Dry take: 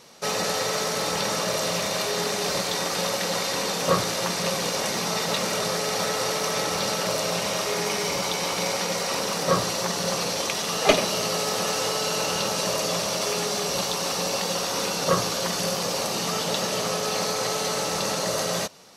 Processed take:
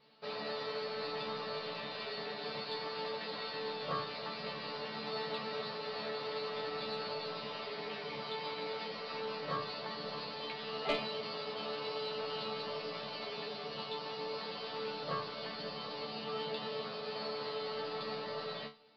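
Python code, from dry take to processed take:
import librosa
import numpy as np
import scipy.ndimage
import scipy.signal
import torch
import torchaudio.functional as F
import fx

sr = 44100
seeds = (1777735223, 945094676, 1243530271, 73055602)

y = scipy.signal.sosfilt(scipy.signal.butter(16, 4800.0, 'lowpass', fs=sr, output='sos'), x)
y = fx.resonator_bank(y, sr, root=50, chord='fifth', decay_s=0.24)
y = 10.0 ** (-20.0 / 20.0) * np.tanh(y / 10.0 ** (-20.0 / 20.0))
y = y * 10.0 ** (-1.5 / 20.0)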